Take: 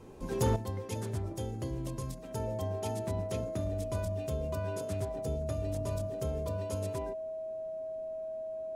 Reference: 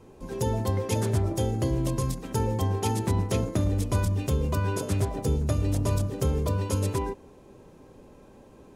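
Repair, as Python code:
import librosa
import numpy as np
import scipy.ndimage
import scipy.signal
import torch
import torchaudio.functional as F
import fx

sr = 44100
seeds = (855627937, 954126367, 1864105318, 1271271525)

y = fx.fix_declip(x, sr, threshold_db=-22.0)
y = fx.notch(y, sr, hz=640.0, q=30.0)
y = fx.fix_level(y, sr, at_s=0.56, step_db=10.5)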